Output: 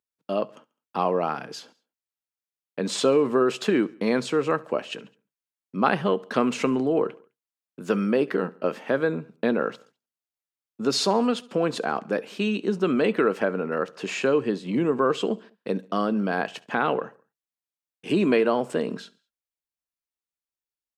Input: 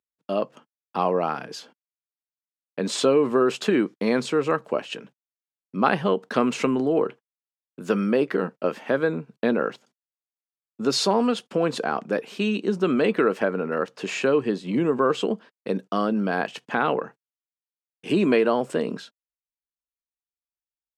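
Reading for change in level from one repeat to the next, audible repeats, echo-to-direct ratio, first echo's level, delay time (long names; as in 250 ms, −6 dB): −6.0 dB, 3, −22.0 dB, −23.0 dB, 69 ms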